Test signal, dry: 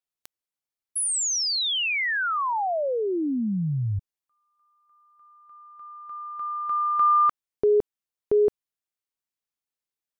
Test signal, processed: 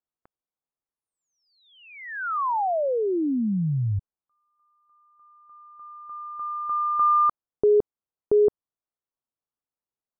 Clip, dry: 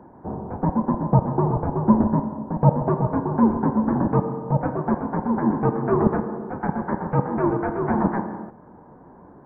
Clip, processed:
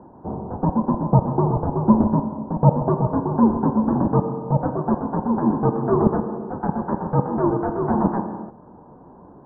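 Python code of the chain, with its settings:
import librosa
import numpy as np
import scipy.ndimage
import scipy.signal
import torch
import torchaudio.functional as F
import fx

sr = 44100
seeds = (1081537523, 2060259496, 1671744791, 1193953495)

y = scipy.signal.sosfilt(scipy.signal.butter(4, 1300.0, 'lowpass', fs=sr, output='sos'), x)
y = F.gain(torch.from_numpy(y), 1.5).numpy()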